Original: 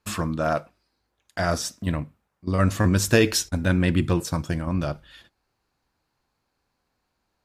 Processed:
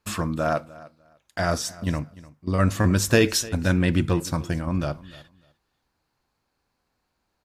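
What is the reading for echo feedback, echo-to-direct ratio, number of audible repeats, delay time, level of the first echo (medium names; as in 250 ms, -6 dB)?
19%, -20.0 dB, 2, 299 ms, -20.0 dB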